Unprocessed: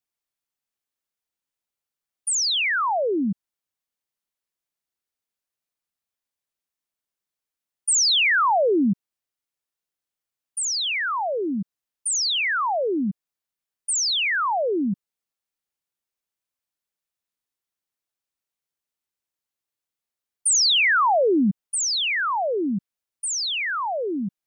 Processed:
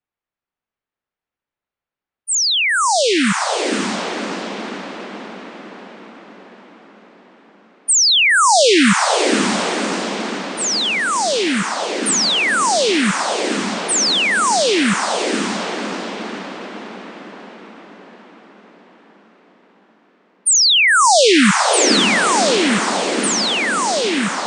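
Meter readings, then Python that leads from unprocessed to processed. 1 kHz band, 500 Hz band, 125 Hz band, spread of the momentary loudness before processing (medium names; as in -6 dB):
+8.0 dB, +8.0 dB, +8.0 dB, 13 LU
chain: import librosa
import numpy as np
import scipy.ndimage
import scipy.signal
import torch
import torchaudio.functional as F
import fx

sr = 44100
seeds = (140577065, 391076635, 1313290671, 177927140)

y = fx.rattle_buzz(x, sr, strikes_db=-24.0, level_db=-23.0)
y = fx.echo_diffused(y, sr, ms=571, feedback_pct=60, wet_db=-4.0)
y = fx.env_lowpass(y, sr, base_hz=2100.0, full_db=-19.5)
y = y * 10.0 ** (6.0 / 20.0)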